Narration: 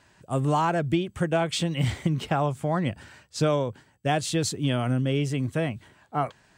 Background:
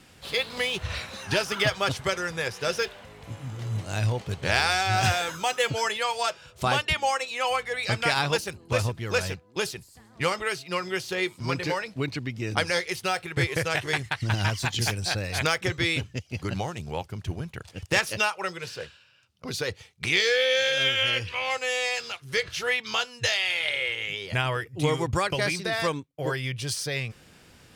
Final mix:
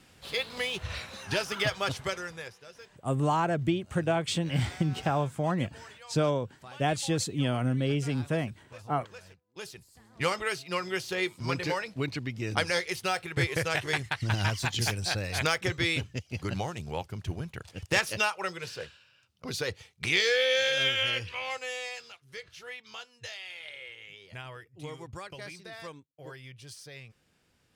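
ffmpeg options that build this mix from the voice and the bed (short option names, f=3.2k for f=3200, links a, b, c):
-filter_complex "[0:a]adelay=2750,volume=-3dB[a];[1:a]volume=16dB,afade=t=out:st=2:d=0.65:silence=0.11885,afade=t=in:st=9.47:d=0.72:silence=0.0944061,afade=t=out:st=20.78:d=1.46:silence=0.199526[b];[a][b]amix=inputs=2:normalize=0"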